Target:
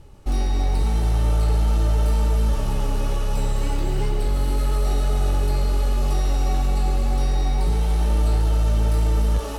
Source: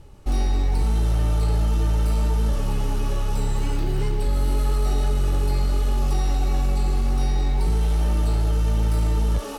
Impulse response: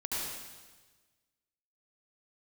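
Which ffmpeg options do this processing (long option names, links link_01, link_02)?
-filter_complex "[0:a]asplit=2[link_01][link_02];[link_02]lowshelf=frequency=380:width_type=q:width=3:gain=-10[link_03];[1:a]atrim=start_sample=2205,asetrate=35280,aresample=44100,adelay=141[link_04];[link_03][link_04]afir=irnorm=-1:irlink=0,volume=-11.5dB[link_05];[link_01][link_05]amix=inputs=2:normalize=0"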